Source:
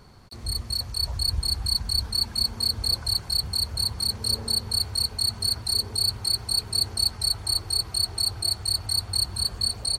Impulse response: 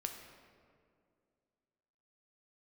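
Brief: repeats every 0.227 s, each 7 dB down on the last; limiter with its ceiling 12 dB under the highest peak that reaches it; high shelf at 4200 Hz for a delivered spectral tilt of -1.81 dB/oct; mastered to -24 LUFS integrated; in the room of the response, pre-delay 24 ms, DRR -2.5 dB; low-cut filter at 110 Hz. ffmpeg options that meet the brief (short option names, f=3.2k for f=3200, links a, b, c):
-filter_complex "[0:a]highpass=110,highshelf=f=4.2k:g=5.5,alimiter=limit=-20.5dB:level=0:latency=1,aecho=1:1:227|454|681|908|1135:0.447|0.201|0.0905|0.0407|0.0183,asplit=2[a][b];[1:a]atrim=start_sample=2205,adelay=24[c];[b][c]afir=irnorm=-1:irlink=0,volume=3.5dB[d];[a][d]amix=inputs=2:normalize=0,volume=-0.5dB"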